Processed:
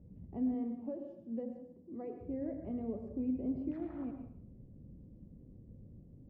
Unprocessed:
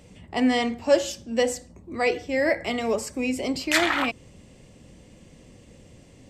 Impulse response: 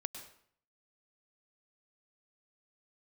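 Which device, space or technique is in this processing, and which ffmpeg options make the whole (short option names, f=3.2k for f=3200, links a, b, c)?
television next door: -filter_complex "[0:a]asettb=1/sr,asplit=3[a][b][c];[a]atrim=end=0.544[d];[b]atrim=start=0.54:end=2.21,asetpts=PTS-STARTPTS,afade=t=in:d=0.004:c=qsin,afade=t=out:st=1.666:d=0.004:c=qsin,highpass=240[e];[c]atrim=start=2.206[f];[d][e]acrossfade=d=0.004:c1=hsin:c2=qsin[g];[g][f]acrossfade=d=0.004:c1=qsin:c2=hsin,acompressor=threshold=-25dB:ratio=3,lowpass=250[h];[1:a]atrim=start_sample=2205[i];[h][i]afir=irnorm=-1:irlink=0,volume=-1dB"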